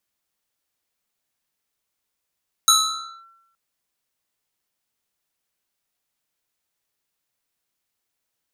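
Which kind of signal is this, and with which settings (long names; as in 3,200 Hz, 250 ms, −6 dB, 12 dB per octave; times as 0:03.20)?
two-operator FM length 0.87 s, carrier 1,350 Hz, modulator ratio 1.95, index 3.1, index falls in 0.57 s linear, decay 0.90 s, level −9 dB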